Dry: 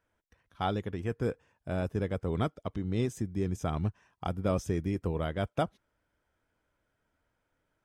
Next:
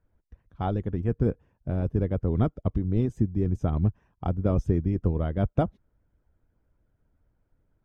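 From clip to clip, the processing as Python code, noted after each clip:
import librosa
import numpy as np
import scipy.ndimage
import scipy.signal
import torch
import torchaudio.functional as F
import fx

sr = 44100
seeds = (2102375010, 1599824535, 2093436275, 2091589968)

y = fx.tilt_eq(x, sr, slope=-4.5)
y = fx.hpss(y, sr, part='harmonic', gain_db=-8)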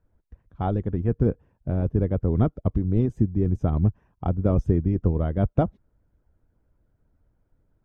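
y = fx.high_shelf(x, sr, hz=2200.0, db=-8.5)
y = y * 10.0 ** (3.0 / 20.0)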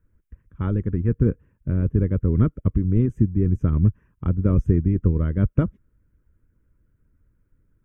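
y = fx.fixed_phaser(x, sr, hz=1800.0, stages=4)
y = y * 10.0 ** (3.5 / 20.0)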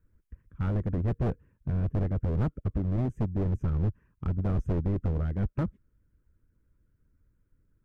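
y = fx.rider(x, sr, range_db=10, speed_s=2.0)
y = np.clip(10.0 ** (19.0 / 20.0) * y, -1.0, 1.0) / 10.0 ** (19.0 / 20.0)
y = y * 10.0 ** (-4.5 / 20.0)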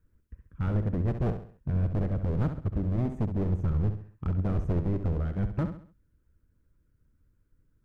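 y = fx.echo_feedback(x, sr, ms=67, feedback_pct=39, wet_db=-9.0)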